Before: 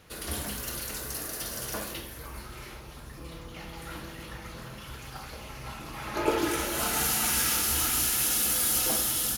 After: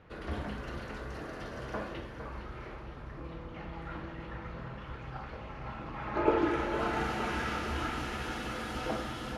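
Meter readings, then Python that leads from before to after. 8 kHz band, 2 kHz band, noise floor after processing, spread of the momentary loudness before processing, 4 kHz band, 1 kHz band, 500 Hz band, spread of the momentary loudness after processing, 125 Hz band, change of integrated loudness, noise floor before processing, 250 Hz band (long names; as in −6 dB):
−27.0 dB, −3.0 dB, −45 dBFS, 19 LU, −12.5 dB, 0.0 dB, +0.5 dB, 13 LU, +0.5 dB, −10.0 dB, −44 dBFS, +0.5 dB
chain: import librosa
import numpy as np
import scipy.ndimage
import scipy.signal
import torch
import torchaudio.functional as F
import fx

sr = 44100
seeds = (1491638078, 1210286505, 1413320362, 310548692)

y = scipy.signal.sosfilt(scipy.signal.butter(2, 1800.0, 'lowpass', fs=sr, output='sos'), x)
y = fx.echo_feedback(y, sr, ms=460, feedback_pct=58, wet_db=-10.5)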